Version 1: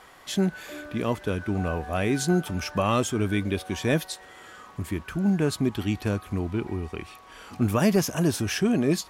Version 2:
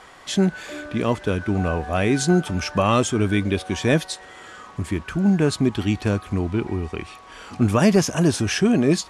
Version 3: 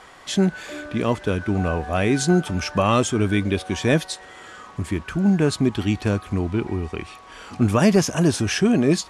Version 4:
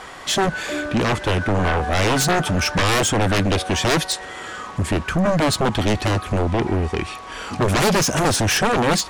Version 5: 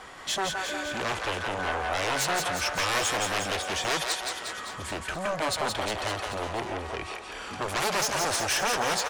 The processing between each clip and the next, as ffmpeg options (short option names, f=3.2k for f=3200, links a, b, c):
-af "lowpass=f=9.7k:w=0.5412,lowpass=f=9.7k:w=1.3066,volume=5dB"
-af anull
-af "aeval=exprs='0.447*(cos(1*acos(clip(val(0)/0.447,-1,1)))-cos(1*PI/2))+0.178*(cos(3*acos(clip(val(0)/0.447,-1,1)))-cos(3*PI/2))+0.224*(cos(7*acos(clip(val(0)/0.447,-1,1)))-cos(7*PI/2))':c=same,volume=-2.5dB"
-filter_complex "[0:a]acrossover=split=490[a][b];[a]asoftclip=type=tanh:threshold=-30.5dB[c];[b]aecho=1:1:170|357|562.7|789|1038:0.631|0.398|0.251|0.158|0.1[d];[c][d]amix=inputs=2:normalize=0,volume=-8dB"